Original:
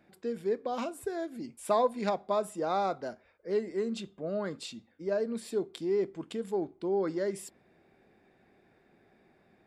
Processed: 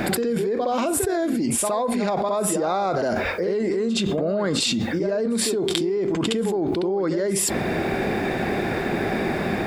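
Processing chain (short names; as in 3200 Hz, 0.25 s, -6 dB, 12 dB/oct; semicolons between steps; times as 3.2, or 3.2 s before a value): reverse echo 67 ms -12.5 dB; fast leveller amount 100%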